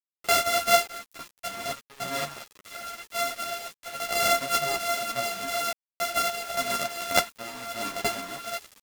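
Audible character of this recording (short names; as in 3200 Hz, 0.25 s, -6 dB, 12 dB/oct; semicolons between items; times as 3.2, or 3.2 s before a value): a buzz of ramps at a fixed pitch in blocks of 64 samples; random-step tremolo, depth 100%; a quantiser's noise floor 8-bit, dither none; a shimmering, thickened sound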